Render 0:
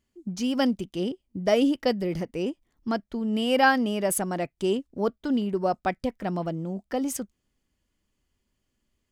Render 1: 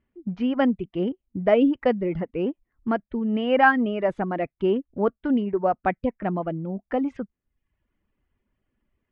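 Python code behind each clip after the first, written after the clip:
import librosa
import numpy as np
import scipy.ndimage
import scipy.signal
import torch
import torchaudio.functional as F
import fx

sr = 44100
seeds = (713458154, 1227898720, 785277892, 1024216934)

y = scipy.signal.sosfilt(scipy.signal.butter(4, 2400.0, 'lowpass', fs=sr, output='sos'), x)
y = fx.dereverb_blind(y, sr, rt60_s=0.64)
y = y * 10.0 ** (3.5 / 20.0)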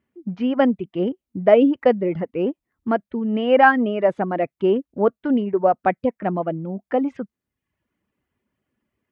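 y = scipy.signal.sosfilt(scipy.signal.butter(2, 110.0, 'highpass', fs=sr, output='sos'), x)
y = fx.dynamic_eq(y, sr, hz=560.0, q=1.2, threshold_db=-30.0, ratio=4.0, max_db=4)
y = y * 10.0 ** (2.0 / 20.0)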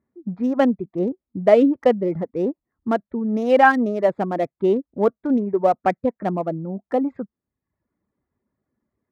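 y = fx.wiener(x, sr, points=15)
y = fx.notch(y, sr, hz=1500.0, q=21.0)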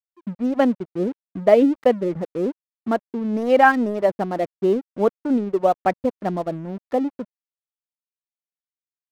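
y = np.sign(x) * np.maximum(np.abs(x) - 10.0 ** (-39.5 / 20.0), 0.0)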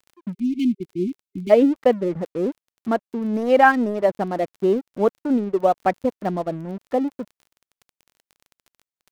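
y = fx.spec_erase(x, sr, start_s=0.32, length_s=1.18, low_hz=390.0, high_hz=2100.0)
y = fx.dmg_crackle(y, sr, seeds[0], per_s=21.0, level_db=-37.0)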